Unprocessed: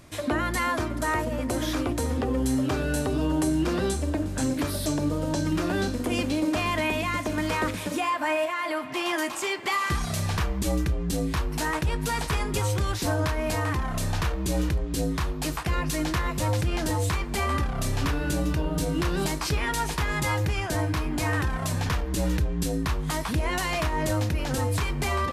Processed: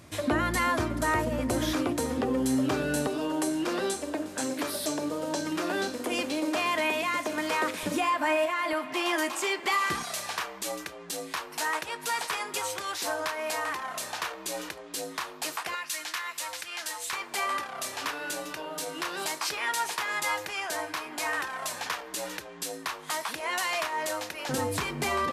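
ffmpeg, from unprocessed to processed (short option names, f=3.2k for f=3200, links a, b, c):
-af "asetnsamples=n=441:p=0,asendcmd='1.73 highpass f 160;3.07 highpass f 370;7.83 highpass f 110;8.73 highpass f 260;10.03 highpass f 640;15.75 highpass f 1400;17.13 highpass f 660;24.49 highpass f 190',highpass=63"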